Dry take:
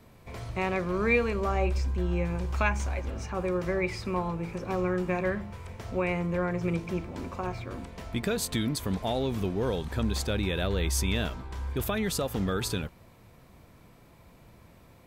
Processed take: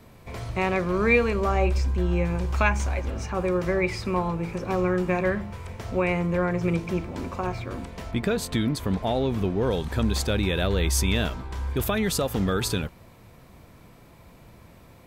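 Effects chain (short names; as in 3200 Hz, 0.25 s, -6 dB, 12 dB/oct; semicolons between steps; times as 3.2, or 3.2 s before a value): 8.11–9.71 high shelf 4100 Hz -8.5 dB; gain +4.5 dB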